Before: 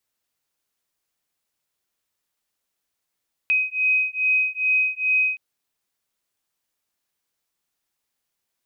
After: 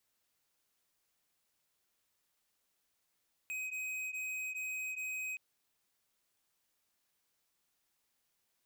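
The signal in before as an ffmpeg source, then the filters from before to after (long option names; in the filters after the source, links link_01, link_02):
-f lavfi -i "aevalsrc='0.0841*(sin(2*PI*2520*t)+sin(2*PI*2522.4*t))':duration=1.87:sample_rate=44100"
-af "alimiter=level_in=2dB:limit=-24dB:level=0:latency=1:release=120,volume=-2dB,asoftclip=type=tanh:threshold=-39dB"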